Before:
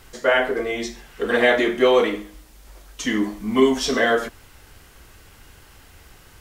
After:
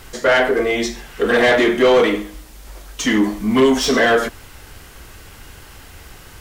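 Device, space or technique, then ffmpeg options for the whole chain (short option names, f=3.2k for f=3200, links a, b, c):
saturation between pre-emphasis and de-emphasis: -af "highshelf=f=2.9k:g=10.5,asoftclip=type=tanh:threshold=-15.5dB,highshelf=f=2.9k:g=-10.5,volume=8dB"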